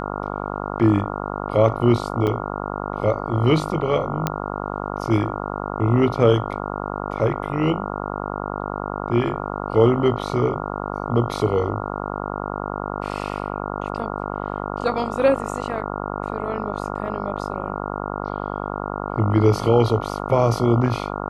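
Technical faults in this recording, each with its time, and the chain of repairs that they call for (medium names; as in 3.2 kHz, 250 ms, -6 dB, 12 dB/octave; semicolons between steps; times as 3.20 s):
buzz 50 Hz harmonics 28 -28 dBFS
2.27 s: dropout 3.8 ms
4.27 s: pop -7 dBFS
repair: de-click; de-hum 50 Hz, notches 28; interpolate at 2.27 s, 3.8 ms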